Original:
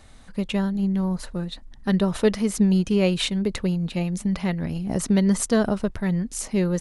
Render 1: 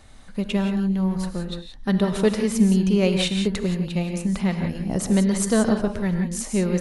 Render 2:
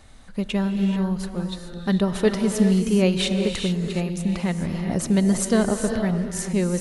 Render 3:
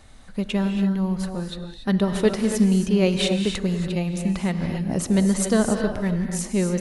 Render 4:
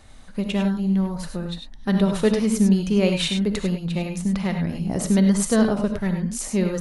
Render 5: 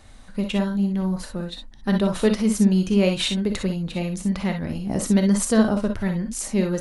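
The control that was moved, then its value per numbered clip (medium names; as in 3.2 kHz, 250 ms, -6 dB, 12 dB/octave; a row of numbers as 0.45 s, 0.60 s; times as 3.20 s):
gated-style reverb, gate: 200 ms, 460 ms, 310 ms, 120 ms, 80 ms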